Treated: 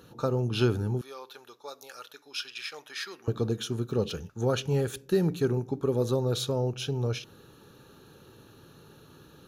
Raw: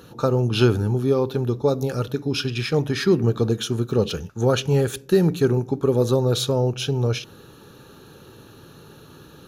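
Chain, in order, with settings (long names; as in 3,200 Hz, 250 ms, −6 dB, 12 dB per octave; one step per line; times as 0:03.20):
0:01.01–0:03.28: high-pass filter 1,200 Hz 12 dB per octave
level −7.5 dB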